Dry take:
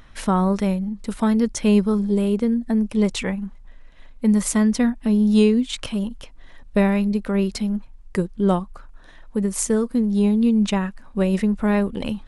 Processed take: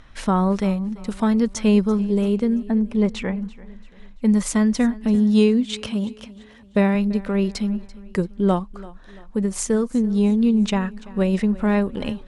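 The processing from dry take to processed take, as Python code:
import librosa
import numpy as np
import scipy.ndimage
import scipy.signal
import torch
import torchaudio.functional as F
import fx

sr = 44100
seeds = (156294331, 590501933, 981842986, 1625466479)

y = scipy.signal.sosfilt(scipy.signal.butter(2, 8300.0, 'lowpass', fs=sr, output='sos'), x)
y = fx.high_shelf(y, sr, hz=3600.0, db=-10.5, at=(2.63, 3.41))
y = fx.highpass(y, sr, hz=45.0, slope=24, at=(5.15, 6.95))
y = fx.echo_feedback(y, sr, ms=338, feedback_pct=43, wet_db=-20.0)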